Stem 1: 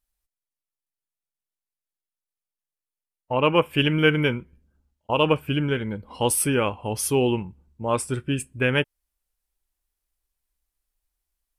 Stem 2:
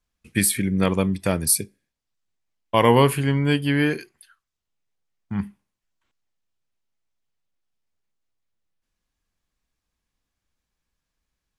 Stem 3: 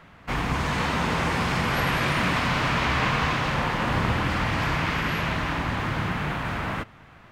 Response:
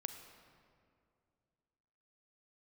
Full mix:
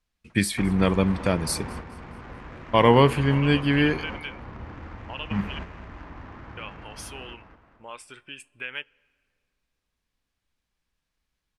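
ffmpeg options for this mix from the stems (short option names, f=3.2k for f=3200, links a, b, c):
-filter_complex "[0:a]acompressor=threshold=-32dB:ratio=4,bandpass=f=2.6k:t=q:w=0.98:csg=0,volume=3dB,asplit=3[a][b][c];[a]atrim=end=5.59,asetpts=PTS-STARTPTS,afade=t=out:st=5.586:d=0.004:c=hsin[d];[b]atrim=start=5.59:end=6.57,asetpts=PTS-STARTPTS,volume=0[e];[c]atrim=start=6.57,asetpts=PTS-STARTPTS,afade=t=in:d=0.004:c=hsin[f];[d][e][f]concat=n=3:v=0:a=1,asplit=2[g][h];[h]volume=-17dB[i];[1:a]lowpass=5.7k,volume=-0.5dB,asplit=3[j][k][l];[k]volume=-23.5dB[m];[2:a]acrossover=split=350[n][o];[o]acompressor=threshold=-35dB:ratio=5[p];[n][p]amix=inputs=2:normalize=0,equalizer=f=150:t=o:w=1.3:g=-12.5,adynamicsmooth=sensitivity=2.5:basefreq=1.3k,adelay=300,volume=-2dB,asplit=2[q][r];[r]volume=-6dB[s];[l]apad=whole_len=335809[t];[q][t]sidechaingate=range=-33dB:threshold=-51dB:ratio=16:detection=peak[u];[3:a]atrim=start_sample=2205[v];[i][v]afir=irnorm=-1:irlink=0[w];[m][s]amix=inputs=2:normalize=0,aecho=0:1:213|426|639|852|1065|1278:1|0.4|0.16|0.064|0.0256|0.0102[x];[g][j][u][w][x]amix=inputs=5:normalize=0"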